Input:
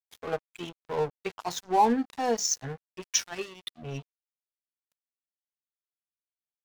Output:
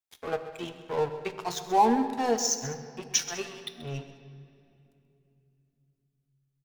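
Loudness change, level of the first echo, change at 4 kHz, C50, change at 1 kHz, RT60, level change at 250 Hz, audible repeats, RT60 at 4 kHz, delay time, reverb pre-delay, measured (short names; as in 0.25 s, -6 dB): 0.0 dB, -14.0 dB, +0.5 dB, 9.0 dB, +1.0 dB, 2.8 s, +1.5 dB, 2, 2.0 s, 0.132 s, 9 ms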